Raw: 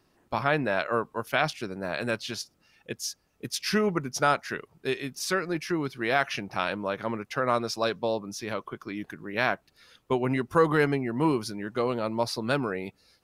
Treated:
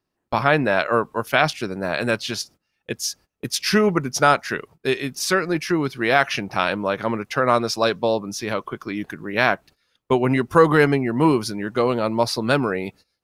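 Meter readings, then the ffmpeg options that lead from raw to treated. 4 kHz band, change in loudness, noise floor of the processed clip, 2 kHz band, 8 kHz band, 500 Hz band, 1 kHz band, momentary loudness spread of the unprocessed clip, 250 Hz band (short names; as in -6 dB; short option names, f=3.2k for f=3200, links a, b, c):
+7.5 dB, +7.5 dB, -77 dBFS, +7.5 dB, +7.5 dB, +7.5 dB, +7.5 dB, 10 LU, +7.5 dB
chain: -af "agate=range=-20dB:threshold=-51dB:ratio=16:detection=peak,volume=7.5dB"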